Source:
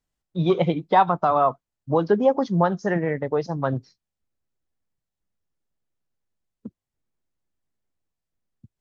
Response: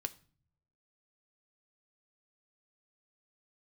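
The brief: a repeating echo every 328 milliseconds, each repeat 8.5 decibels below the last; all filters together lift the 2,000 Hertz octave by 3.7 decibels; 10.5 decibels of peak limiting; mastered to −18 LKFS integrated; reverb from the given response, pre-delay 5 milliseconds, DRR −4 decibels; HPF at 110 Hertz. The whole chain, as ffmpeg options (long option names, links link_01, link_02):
-filter_complex "[0:a]highpass=110,equalizer=frequency=2000:width_type=o:gain=4.5,alimiter=limit=-16dB:level=0:latency=1,aecho=1:1:328|656|984|1312:0.376|0.143|0.0543|0.0206,asplit=2[link_01][link_02];[1:a]atrim=start_sample=2205,adelay=5[link_03];[link_02][link_03]afir=irnorm=-1:irlink=0,volume=5dB[link_04];[link_01][link_04]amix=inputs=2:normalize=0,volume=3.5dB"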